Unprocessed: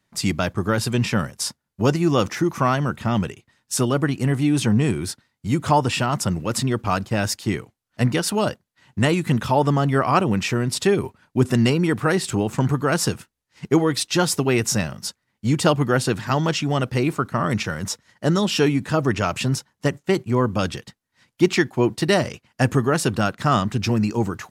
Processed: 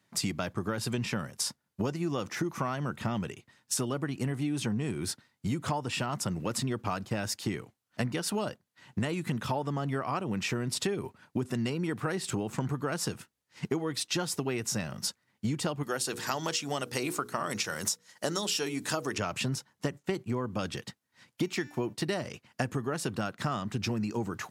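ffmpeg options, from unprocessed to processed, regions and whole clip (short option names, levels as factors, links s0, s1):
-filter_complex "[0:a]asettb=1/sr,asplit=3[s0][s1][s2];[s0]atrim=end=15.834[s3];[s1]atrim=start=15.83:end=19.18,asetpts=PTS-STARTPTS,afade=t=in:d=0.004:c=qsin,afade=t=out:st=3.346:d=0.004:c=qsin,bass=f=250:g=-10,treble=f=4000:g=11,bandreject=f=60:t=h:w=6,bandreject=f=120:t=h:w=6,bandreject=f=180:t=h:w=6,bandreject=f=240:t=h:w=6,bandreject=f=300:t=h:w=6,bandreject=f=360:t=h:w=6,bandreject=f=420:t=h:w=6,bandreject=f=480:t=h:w=6,deesser=0.2[s4];[s2]atrim=start=19.176[s5];[s3][s4]acrossfade=d=0.004:c1=hsin:c2=qsin[s6];[s6][s5]acrossfade=d=0.004:c1=qsin:c2=hsin,asettb=1/sr,asplit=3[s7][s8][s9];[s7]atrim=end=21.434[s10];[s8]atrim=start=21.43:end=21.93,asetpts=PTS-STARTPTS,afade=t=in:d=0.004:c=qsin,afade=t=out:st=0.496:d=0.004:c=qsin,highshelf=f=11000:g=10,bandreject=f=293.5:t=h:w=4,bandreject=f=587:t=h:w=4,bandreject=f=880.5:t=h:w=4,bandreject=f=1174:t=h:w=4,bandreject=f=1467.5:t=h:w=4,bandreject=f=1761:t=h:w=4,bandreject=f=2054.5:t=h:w=4,bandreject=f=2348:t=h:w=4,bandreject=f=2641.5:t=h:w=4,bandreject=f=2935:t=h:w=4,bandreject=f=3228.5:t=h:w=4,bandreject=f=3522:t=h:w=4,bandreject=f=3815.5:t=h:w=4,bandreject=f=4109:t=h:w=4,bandreject=f=4402.5:t=h:w=4,bandreject=f=4696:t=h:w=4,bandreject=f=4989.5:t=h:w=4,bandreject=f=5283:t=h:w=4,bandreject=f=5576.5:t=h:w=4,bandreject=f=5870:t=h:w=4,bandreject=f=6163.5:t=h:w=4,bandreject=f=6457:t=h:w=4,bandreject=f=6750.5:t=h:w=4,bandreject=f=7044:t=h:w=4,bandreject=f=7337.5:t=h:w=4,bandreject=f=7631:t=h:w=4[s11];[s9]atrim=start=21.926[s12];[s10][s11]acrossfade=d=0.004:c1=hsin:c2=qsin[s13];[s13][s12]acrossfade=d=0.004:c1=qsin:c2=hsin,highpass=98,acompressor=threshold=0.0398:ratio=10"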